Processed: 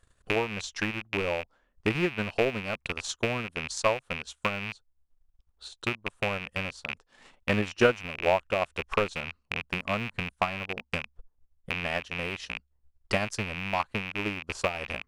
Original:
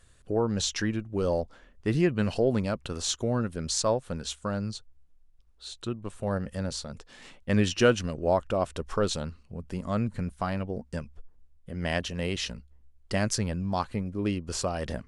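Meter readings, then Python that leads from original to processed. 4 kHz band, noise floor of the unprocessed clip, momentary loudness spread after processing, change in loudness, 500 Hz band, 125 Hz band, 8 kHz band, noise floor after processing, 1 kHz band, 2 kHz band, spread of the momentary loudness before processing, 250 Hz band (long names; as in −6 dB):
−1.0 dB, −59 dBFS, 10 LU, −1.0 dB, −1.5 dB, −6.5 dB, −8.0 dB, −73 dBFS, +2.0 dB, +7.0 dB, 13 LU, −5.5 dB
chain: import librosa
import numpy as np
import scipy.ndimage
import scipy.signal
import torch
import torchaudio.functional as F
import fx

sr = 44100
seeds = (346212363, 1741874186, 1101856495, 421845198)

y = fx.rattle_buzz(x, sr, strikes_db=-37.0, level_db=-16.0)
y = fx.peak_eq(y, sr, hz=950.0, db=6.5, octaves=1.8)
y = fx.transient(y, sr, attack_db=9, sustain_db=-8)
y = y * 10.0 ** (-8.5 / 20.0)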